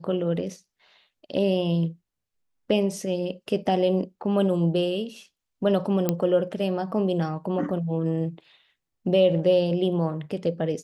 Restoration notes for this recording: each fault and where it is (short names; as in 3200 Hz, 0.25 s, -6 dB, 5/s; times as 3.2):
6.09 pop -9 dBFS